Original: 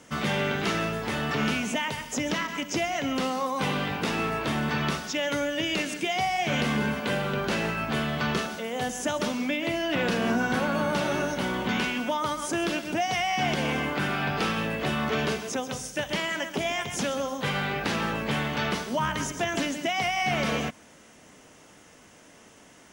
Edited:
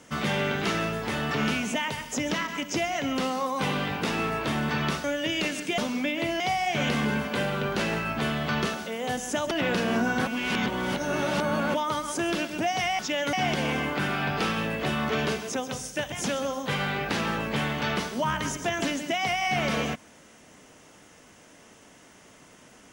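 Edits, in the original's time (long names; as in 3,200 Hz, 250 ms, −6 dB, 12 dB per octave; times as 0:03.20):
0:05.04–0:05.38: move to 0:13.33
0:09.23–0:09.85: move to 0:06.12
0:10.61–0:12.08: reverse
0:16.12–0:16.87: remove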